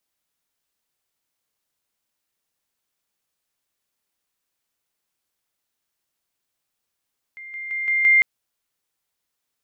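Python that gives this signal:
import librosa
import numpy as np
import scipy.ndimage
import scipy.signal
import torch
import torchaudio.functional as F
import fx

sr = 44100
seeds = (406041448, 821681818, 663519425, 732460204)

y = fx.level_ladder(sr, hz=2100.0, from_db=-35.5, step_db=6.0, steps=5, dwell_s=0.17, gap_s=0.0)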